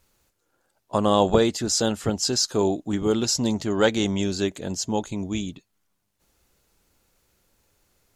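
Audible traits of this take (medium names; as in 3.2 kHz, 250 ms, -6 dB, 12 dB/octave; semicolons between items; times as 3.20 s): noise floor -74 dBFS; spectral tilt -4.0 dB/octave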